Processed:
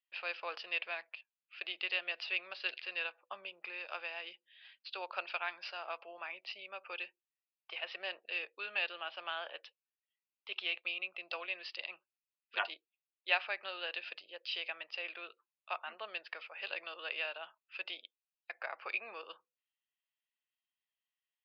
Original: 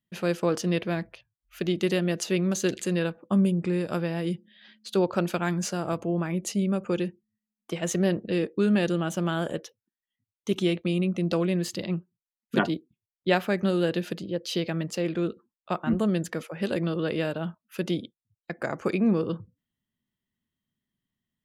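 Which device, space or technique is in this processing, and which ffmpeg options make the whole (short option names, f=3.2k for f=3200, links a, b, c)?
musical greeting card: -filter_complex "[0:a]asettb=1/sr,asplit=3[a][b][c];[a]atrim=end=14.424[d];[b]atrim=start=14.42:end=15.08,asetpts=PTS-STARTPTS,afade=t=in:d=0.004:c=qsin,afade=t=out:st=0.656:d=0.004:c=qsin,bandreject=f=4.3k:w=11[e];[c]atrim=start=15.076[f];[d][e]acrossfade=d=0.004:c1=hsin:c2=qsin[g];[g][f]acrossfade=d=0.004:c1=qsin:c2=hsin,aresample=11025,aresample=44100,highpass=f=720:w=0.5412,highpass=f=720:w=1.3066,equalizer=f=2.6k:t=o:w=0.41:g=12,volume=-8dB"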